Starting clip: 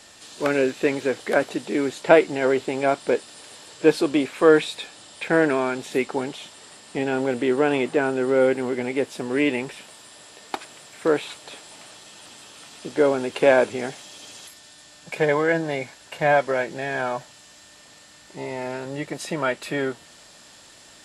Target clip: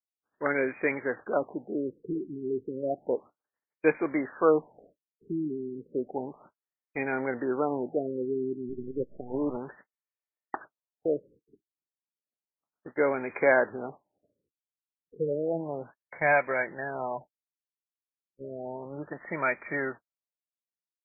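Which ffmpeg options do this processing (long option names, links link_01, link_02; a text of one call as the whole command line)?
ffmpeg -i in.wav -filter_complex "[0:a]acrossover=split=4600[link_01][link_02];[link_01]crystalizer=i=9:c=0[link_03];[link_03][link_02]amix=inputs=2:normalize=0,adynamicequalizer=threshold=0.0355:dfrequency=440:dqfactor=4.1:tfrequency=440:tqfactor=4.1:attack=5:release=100:ratio=0.375:range=1.5:mode=cutabove:tftype=bell,agate=range=-51dB:threshold=-30dB:ratio=16:detection=peak,asettb=1/sr,asplit=3[link_04][link_05][link_06];[link_04]atrim=end=8.694[link_07];[link_05]atrim=start=8.69:end=9.57,asetpts=PTS-STARTPTS,afade=type=in:duration=0.004:curve=qsin,afade=type=out:start_time=0.876:duration=0.004:curve=qsin,acrusher=bits=4:dc=4:mix=0:aa=0.000001[link_08];[link_06]atrim=start=9.566[link_09];[link_07][link_08]acrossfade=duration=0.004:curve1=hsin:curve2=qsin[link_10];[link_10][link_09]acrossfade=duration=0.004:curve1=qsin:curve2=hsin,afftfilt=real='re*lt(b*sr/1024,410*pow(2500/410,0.5+0.5*sin(2*PI*0.32*pts/sr)))':imag='im*lt(b*sr/1024,410*pow(2500/410,0.5+0.5*sin(2*PI*0.32*pts/sr)))':win_size=1024:overlap=0.75,volume=-8.5dB" out.wav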